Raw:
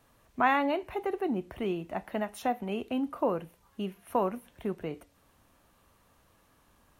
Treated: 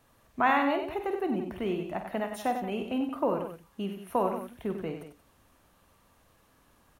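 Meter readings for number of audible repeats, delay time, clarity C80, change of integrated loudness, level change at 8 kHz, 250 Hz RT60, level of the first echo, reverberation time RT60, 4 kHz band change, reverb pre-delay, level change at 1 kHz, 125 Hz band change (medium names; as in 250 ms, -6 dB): 3, 50 ms, no reverb, +1.0 dB, +1.0 dB, no reverb, -10.0 dB, no reverb, +1.5 dB, no reverb, +1.0 dB, +1.0 dB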